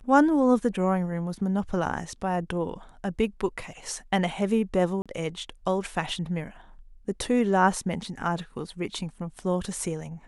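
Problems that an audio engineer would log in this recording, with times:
5.02–5.06 gap 36 ms

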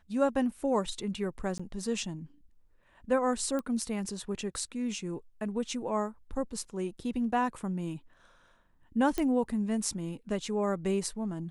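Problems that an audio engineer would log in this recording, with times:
1.58–1.59 gap 15 ms
3.59 pop -22 dBFS
9.18 pop -17 dBFS

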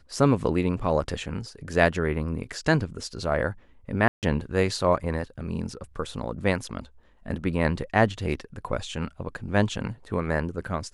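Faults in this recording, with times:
4.08–4.23 gap 0.148 s

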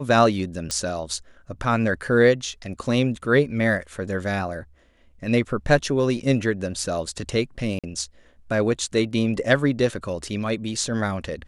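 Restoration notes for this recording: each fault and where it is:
0.71 pop -11 dBFS
7.79–7.84 gap 46 ms

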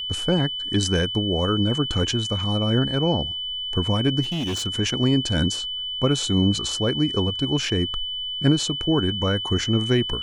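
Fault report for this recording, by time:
tone 3000 Hz -27 dBFS
4.22–4.67 clipped -23 dBFS

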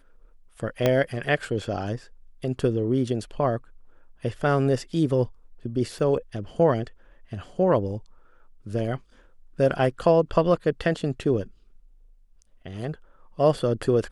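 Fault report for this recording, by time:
0.86 pop -8 dBFS
5.99 gap 3.7 ms

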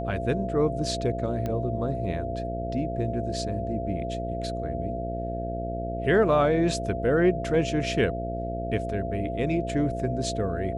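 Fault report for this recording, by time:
buzz 60 Hz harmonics 11 -33 dBFS
tone 680 Hz -32 dBFS
1.46 pop -18 dBFS

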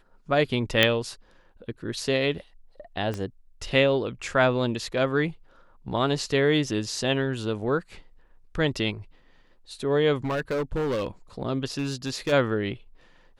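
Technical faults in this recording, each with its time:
0.83 pop -5 dBFS
3.14 pop -19 dBFS
10.17–11.07 clipped -23.5 dBFS
11.78–12.33 clipped -22.5 dBFS

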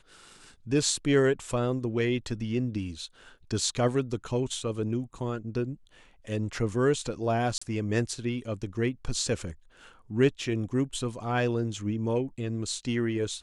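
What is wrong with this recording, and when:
7.58–7.62 gap 35 ms

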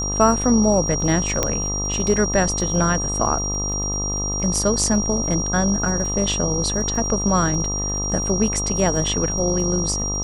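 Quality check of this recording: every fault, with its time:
buzz 50 Hz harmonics 26 -27 dBFS
crackle 41/s -30 dBFS
tone 5700 Hz -24 dBFS
1.43 pop -4 dBFS

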